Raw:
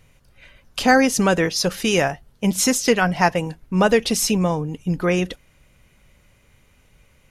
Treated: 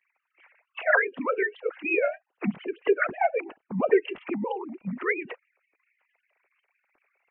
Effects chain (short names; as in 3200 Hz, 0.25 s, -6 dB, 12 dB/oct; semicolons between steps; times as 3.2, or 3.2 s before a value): sine-wave speech; dynamic EQ 350 Hz, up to -4 dB, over -26 dBFS, Q 1.8; formant-preserving pitch shift -3 st; gain -3.5 dB